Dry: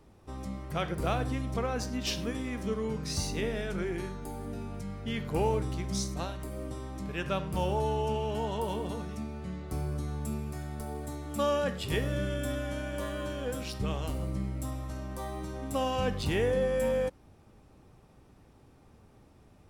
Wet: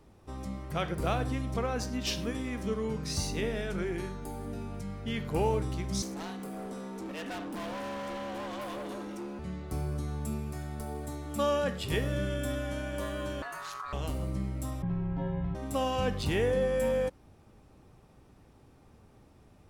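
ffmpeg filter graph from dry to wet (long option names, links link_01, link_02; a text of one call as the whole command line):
ffmpeg -i in.wav -filter_complex "[0:a]asettb=1/sr,asplit=3[link_01][link_02][link_03];[link_01]atrim=end=6.024[link_04];[link_02]atrim=start=6.02:end=9.39,asetpts=PTS-STARTPTS,afade=type=in:duration=0.004:curve=qsin,afade=type=out:start_time=3.366:duration=0.004:curve=qsin,afreqshift=130,volume=36dB,asoftclip=hard,volume=-36dB[link_05];[link_03]atrim=start=9.386[link_06];[link_04][link_05]acrossfade=duration=0.004:curve1=hsin:curve2=qsin[link_07];[link_07][link_06]acrossfade=duration=0.004:curve1=qsin:curve2=hsin,asettb=1/sr,asplit=3[link_08][link_09][link_10];[link_08]atrim=end=13.424[link_11];[link_09]atrim=start=13.42:end=13.93,asetpts=PTS-STARTPTS,afade=type=in:duration=0.004:curve=qsin,afade=type=out:start_time=0.506:duration=0.004:curve=qsin,asubboost=boost=11:cutoff=83,acompressor=threshold=-33dB:ratio=12:attack=3.2:release=140:knee=1:detection=peak,aeval=exprs='val(0)*sin(2*PI*1200*n/s)':channel_layout=same[link_12];[link_10]atrim=start=13.926[link_13];[link_11][link_12]acrossfade=duration=0.004:curve1=hsin:curve2=qsin[link_14];[link_14][link_13]acrossfade=duration=0.004:curve1=qsin:curve2=hsin,asettb=1/sr,asplit=3[link_15][link_16][link_17];[link_15]atrim=end=14.824[link_18];[link_16]atrim=start=14.82:end=15.55,asetpts=PTS-STARTPTS,afade=type=in:duration=0.004:curve=qsin,afade=type=out:start_time=0.726:duration=0.004:curve=qsin,lowpass=frequency=2800:width=0.5412,lowpass=frequency=2800:width=1.3066,lowshelf=frequency=370:gain=7,afreqshift=-240[link_19];[link_17]atrim=start=15.546[link_20];[link_18][link_19]acrossfade=duration=0.004:curve1=hsin:curve2=qsin[link_21];[link_21][link_20]acrossfade=duration=0.004:curve1=qsin:curve2=hsin" out.wav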